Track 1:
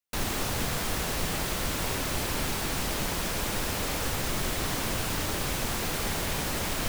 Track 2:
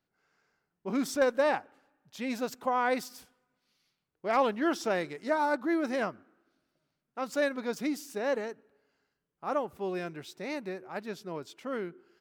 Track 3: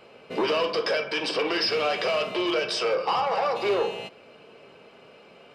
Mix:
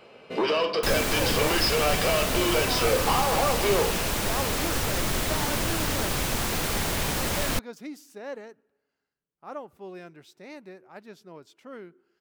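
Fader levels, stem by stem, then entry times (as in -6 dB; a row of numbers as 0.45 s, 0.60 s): +3.0 dB, -7.0 dB, 0.0 dB; 0.70 s, 0.00 s, 0.00 s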